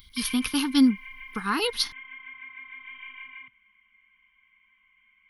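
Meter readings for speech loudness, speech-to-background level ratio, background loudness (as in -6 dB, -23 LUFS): -25.0 LUFS, 16.0 dB, -41.0 LUFS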